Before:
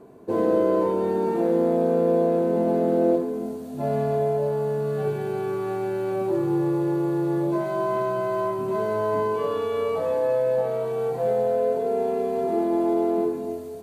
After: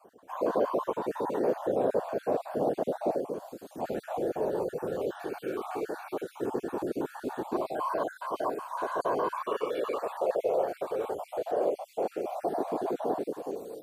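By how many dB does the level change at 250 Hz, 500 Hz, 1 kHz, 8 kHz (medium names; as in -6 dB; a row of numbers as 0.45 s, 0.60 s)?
-11.0 dB, -8.0 dB, -3.5 dB, no reading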